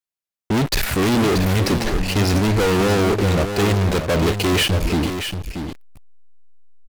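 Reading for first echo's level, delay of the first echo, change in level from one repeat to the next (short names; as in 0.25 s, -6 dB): -8.0 dB, 0.632 s, no steady repeat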